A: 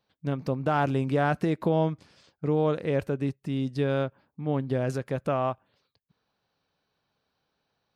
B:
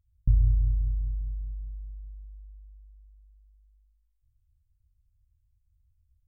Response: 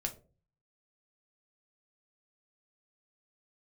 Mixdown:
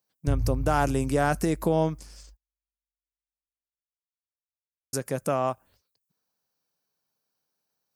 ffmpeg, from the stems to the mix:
-filter_complex "[0:a]highpass=130,agate=range=-11dB:threshold=-58dB:ratio=16:detection=peak,aexciter=amount=9.7:drive=2.5:freq=5300,volume=1dB,asplit=3[link_01][link_02][link_03];[link_01]atrim=end=2.37,asetpts=PTS-STARTPTS,afade=type=out:start_time=2.366:duration=0.004:curve=hsin[link_04];[link_02]atrim=start=2.37:end=4.93,asetpts=PTS-STARTPTS,volume=0[link_05];[link_03]atrim=start=4.93,asetpts=PTS-STARTPTS,afade=type=in:duration=0.004:curve=hsin[link_06];[link_04][link_05][link_06]concat=n=3:v=0:a=1,asplit=2[link_07][link_08];[1:a]equalizer=frequency=100:width=1.1:gain=10.5,volume=-10dB[link_09];[link_08]apad=whole_len=276668[link_10];[link_09][link_10]sidechaingate=range=-43dB:threshold=-60dB:ratio=16:detection=peak[link_11];[link_07][link_11]amix=inputs=2:normalize=0"

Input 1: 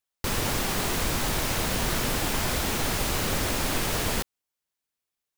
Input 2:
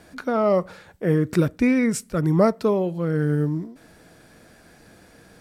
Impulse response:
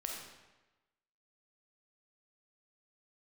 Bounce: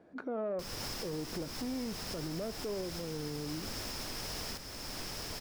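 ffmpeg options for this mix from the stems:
-filter_complex "[0:a]equalizer=frequency=5200:width_type=o:width=0.27:gain=14.5,adelay=350,volume=-8.5dB,asplit=2[link_01][link_02];[link_02]volume=-7dB[link_03];[1:a]agate=range=-7dB:threshold=-40dB:ratio=16:detection=peak,asoftclip=type=tanh:threshold=-17.5dB,bandpass=frequency=410:width_type=q:width=0.86:csg=0,volume=0.5dB[link_04];[link_03]aecho=0:1:893:1[link_05];[link_01][link_04][link_05]amix=inputs=3:normalize=0,alimiter=level_in=5.5dB:limit=-24dB:level=0:latency=1:release=479,volume=-5.5dB"

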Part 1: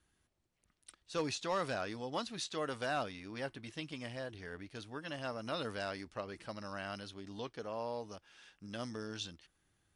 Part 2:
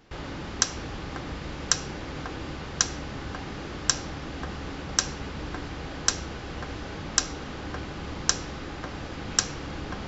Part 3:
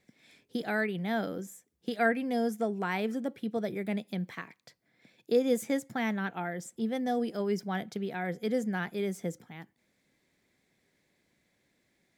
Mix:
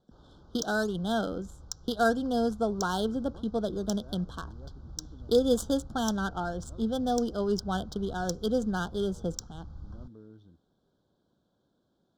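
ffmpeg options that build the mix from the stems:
ffmpeg -i stem1.wav -i stem2.wav -i stem3.wav -filter_complex "[0:a]bass=frequency=250:gain=14,treble=frequency=4000:gain=-3,equalizer=frequency=370:width=1.3:gain=9,adelay=1200,volume=-17.5dB[link_01];[1:a]asubboost=boost=9.5:cutoff=110,alimiter=limit=-9dB:level=0:latency=1:release=261,aexciter=amount=5.6:drive=5.5:freq=4400,volume=-20dB[link_02];[2:a]highshelf=frequency=2600:gain=11.5,volume=2dB,asplit=2[link_03][link_04];[link_04]apad=whole_len=492096[link_05];[link_01][link_05]sidechaincompress=threshold=-35dB:ratio=8:attack=16:release=162[link_06];[link_06][link_02][link_03]amix=inputs=3:normalize=0,adynamicsmooth=sensitivity=5:basefreq=1800,asuperstop=centerf=2200:order=12:qfactor=1.4" out.wav

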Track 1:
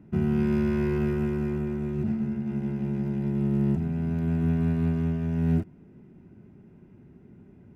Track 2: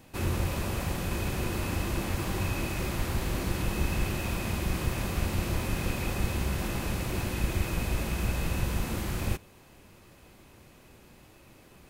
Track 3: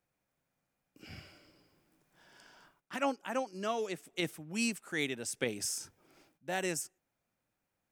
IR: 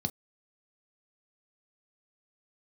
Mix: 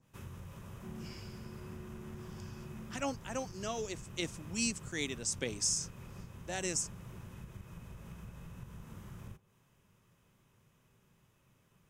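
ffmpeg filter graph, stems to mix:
-filter_complex "[0:a]adelay=700,volume=-19.5dB[link_01];[1:a]acompressor=threshold=-30dB:ratio=4,adynamicequalizer=threshold=0.002:dfrequency=1700:dqfactor=0.7:tfrequency=1700:tqfactor=0.7:attack=5:release=100:ratio=0.375:range=2.5:mode=cutabove:tftype=highshelf,volume=-14dB,asplit=2[link_02][link_03];[link_03]volume=-12dB[link_04];[2:a]lowpass=frequency=6800:width_type=q:width=2.6,equalizer=frequency=1200:width=0.37:gain=-6.5,volume=0.5dB,asplit=2[link_05][link_06];[link_06]apad=whole_len=372674[link_07];[link_01][link_07]sidechaincompress=threshold=-53dB:ratio=8:attack=16:release=1360[link_08];[3:a]atrim=start_sample=2205[link_09];[link_04][link_09]afir=irnorm=-1:irlink=0[link_10];[link_08][link_02][link_05][link_10]amix=inputs=4:normalize=0,lowshelf=frequency=140:gain=-5"

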